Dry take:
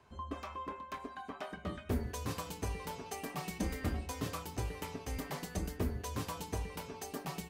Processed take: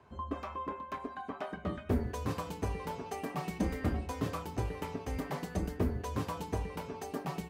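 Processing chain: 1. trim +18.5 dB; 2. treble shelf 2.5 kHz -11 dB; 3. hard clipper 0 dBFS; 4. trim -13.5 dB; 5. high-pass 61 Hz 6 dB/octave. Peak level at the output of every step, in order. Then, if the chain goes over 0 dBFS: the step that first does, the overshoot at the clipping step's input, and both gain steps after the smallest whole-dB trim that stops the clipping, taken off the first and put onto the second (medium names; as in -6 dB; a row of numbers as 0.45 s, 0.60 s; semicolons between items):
-3.5 dBFS, -4.5 dBFS, -4.5 dBFS, -18.0 dBFS, -17.5 dBFS; nothing clips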